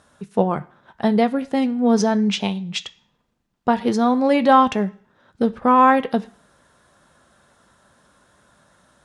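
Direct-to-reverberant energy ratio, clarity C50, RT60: 9.5 dB, 19.5 dB, 0.50 s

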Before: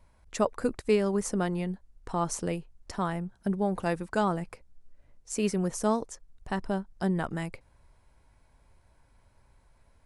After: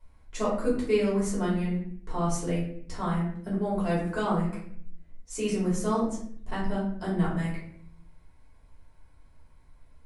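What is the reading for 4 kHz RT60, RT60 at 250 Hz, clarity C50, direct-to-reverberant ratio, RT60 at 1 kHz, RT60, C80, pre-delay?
0.45 s, 1.0 s, 4.0 dB, −8.5 dB, 0.55 s, 0.60 s, 8.0 dB, 3 ms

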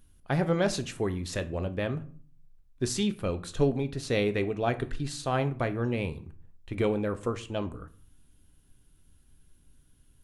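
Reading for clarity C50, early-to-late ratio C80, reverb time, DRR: 16.5 dB, 21.5 dB, 0.45 s, 8.5 dB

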